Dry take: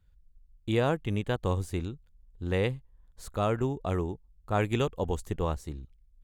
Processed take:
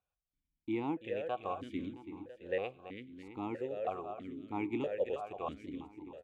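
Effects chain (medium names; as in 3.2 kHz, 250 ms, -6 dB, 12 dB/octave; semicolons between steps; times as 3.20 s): feedback delay 333 ms, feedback 57%, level -8.5 dB; reverberation, pre-delay 3 ms, DRR 20 dB; stepped vowel filter 3.1 Hz; trim +4 dB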